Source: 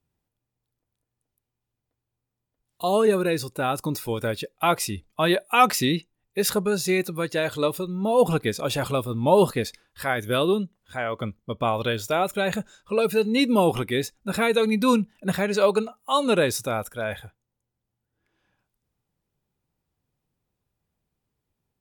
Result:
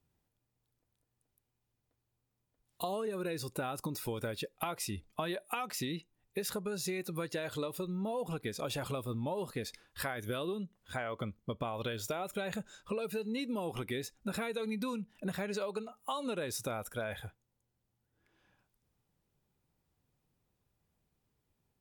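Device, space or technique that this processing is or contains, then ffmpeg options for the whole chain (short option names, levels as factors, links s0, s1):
serial compression, leveller first: -af "acompressor=threshold=0.0631:ratio=2.5,acompressor=threshold=0.0178:ratio=5"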